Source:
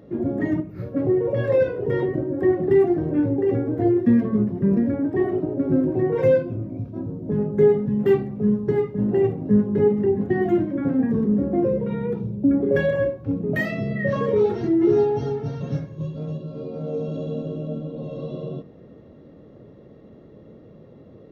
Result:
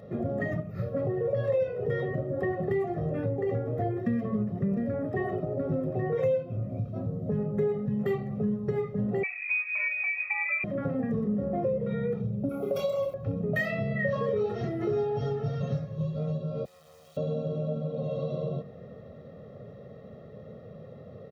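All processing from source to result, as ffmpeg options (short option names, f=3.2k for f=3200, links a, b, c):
-filter_complex "[0:a]asettb=1/sr,asplit=3[a][b][c];[a]atrim=end=9.234[d];[b]atrim=start=9.23:end=10.64,asetpts=PTS-STARTPTS,afade=t=in:d=0.004:c=qsin,afade=t=out:st=1.406:d=0.004:c=qsin,highpass=f=690:p=1,lowpass=f=2.3k:t=q:w=0.5098,lowpass=f=2.3k:t=q:w=0.6013,lowpass=f=2.3k:t=q:w=0.9,lowpass=f=2.3k:t=q:w=2.563,afreqshift=-2700[e];[c]atrim=start=10.636[f];[d][e]acrossfade=d=0.004:c1=hsin:c2=qsin[g];[g][f]acrossfade=d=0.004:c1=qsin:c2=hsin,asettb=1/sr,asplit=3[h][i][j];[h]atrim=end=12.494[k];[i]atrim=start=12.49:end=13.14,asetpts=PTS-STARTPTS,afade=t=in:d=0.004:c=qsin,afade=t=out:st=0.646:d=0.004:c=qsin,asuperstop=centerf=1800:order=20:qfactor=4.3,aemphasis=mode=production:type=riaa,asplit=2[l][m];[m]adelay=28,volume=-6.5dB[n];[l][n]amix=inputs=2:normalize=0,atrim=end_sample=28665[o];[j]atrim=start=13.136[p];[k][o]acrossfade=d=0.004:c1=hsin:c2=qsin[q];[q][p]acrossfade=d=0.004:c1=qsin:c2=hsin,asettb=1/sr,asplit=3[r][s][t];[r]atrim=end=16.654[u];[s]atrim=start=16.65:end=17.17,asetpts=PTS-STARTPTS,afade=t=in:d=0.004:c=qsin,afade=t=out:st=0.516:d=0.004:c=qsin,aderivative,aecho=1:1:5.7:0.6,atrim=end_sample=22932,acrusher=bits=7:dc=4:mix=0:aa=0.000001[v];[t]atrim=start=17.166[w];[u][v]acrossfade=d=0.004:c1=hsin:c2=qsin[x];[x][w]acrossfade=d=0.004:c1=qsin:c2=hsin,highpass=90,aecho=1:1:1.6:0.85,acompressor=threshold=-28dB:ratio=3"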